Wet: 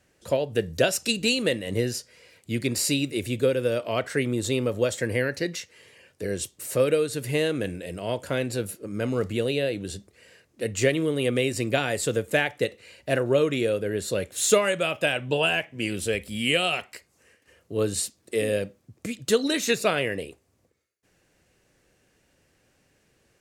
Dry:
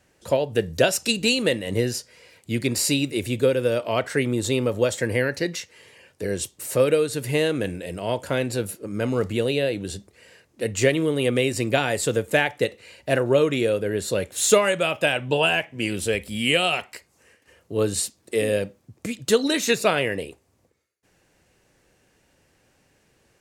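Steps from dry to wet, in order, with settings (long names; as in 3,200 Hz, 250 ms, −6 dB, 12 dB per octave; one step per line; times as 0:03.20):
parametric band 890 Hz −4 dB 0.42 octaves
level −2.5 dB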